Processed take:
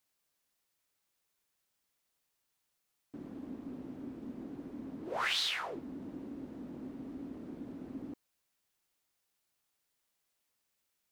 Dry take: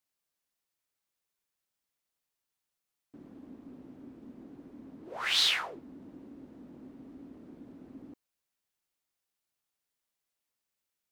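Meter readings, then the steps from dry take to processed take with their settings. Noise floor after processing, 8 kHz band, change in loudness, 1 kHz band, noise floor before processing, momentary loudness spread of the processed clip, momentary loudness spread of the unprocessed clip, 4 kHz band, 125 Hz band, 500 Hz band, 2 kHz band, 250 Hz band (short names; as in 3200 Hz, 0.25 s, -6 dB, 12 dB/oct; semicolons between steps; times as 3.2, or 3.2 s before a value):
-82 dBFS, -7.0 dB, -12.5 dB, +0.5 dB, under -85 dBFS, 14 LU, 19 LU, -7.0 dB, +4.5 dB, +4.0 dB, -3.5 dB, +5.0 dB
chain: compressor 12:1, threshold -35 dBFS, peak gain reduction 13.5 dB; gain +5 dB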